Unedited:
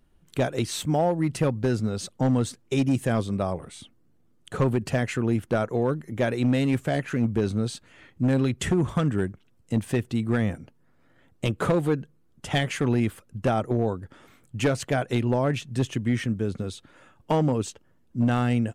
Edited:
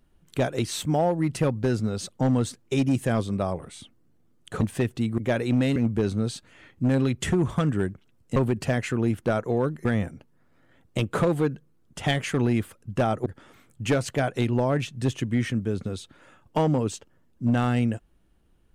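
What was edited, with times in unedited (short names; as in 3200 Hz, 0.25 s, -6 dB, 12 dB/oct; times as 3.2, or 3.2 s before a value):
4.61–6.1 swap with 9.75–10.32
6.68–7.15 cut
13.73–14 cut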